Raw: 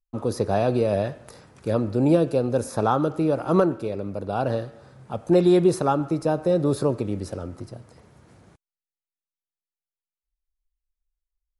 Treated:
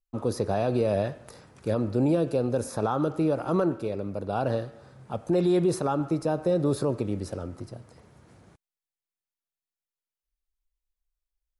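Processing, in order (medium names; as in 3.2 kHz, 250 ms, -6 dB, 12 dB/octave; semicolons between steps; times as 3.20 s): peak limiter -13.5 dBFS, peak gain reduction 5 dB; trim -2 dB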